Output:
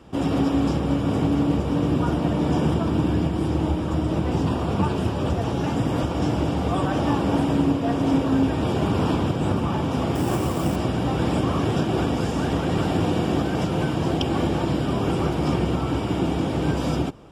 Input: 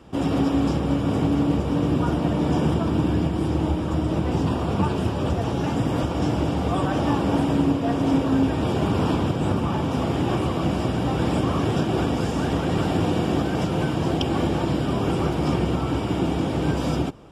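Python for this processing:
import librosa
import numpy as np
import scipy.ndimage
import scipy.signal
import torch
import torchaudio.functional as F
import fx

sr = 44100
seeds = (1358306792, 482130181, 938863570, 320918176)

y = fx.sample_hold(x, sr, seeds[0], rate_hz=8300.0, jitter_pct=0, at=(10.15, 10.76))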